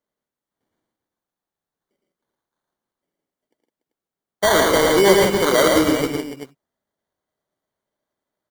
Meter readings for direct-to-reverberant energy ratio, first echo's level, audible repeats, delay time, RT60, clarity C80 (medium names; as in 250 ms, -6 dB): no reverb, -11.5 dB, 5, 76 ms, no reverb, no reverb